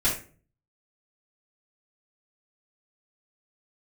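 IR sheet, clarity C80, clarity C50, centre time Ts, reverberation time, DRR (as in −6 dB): 12.5 dB, 6.0 dB, 28 ms, 0.40 s, −9.0 dB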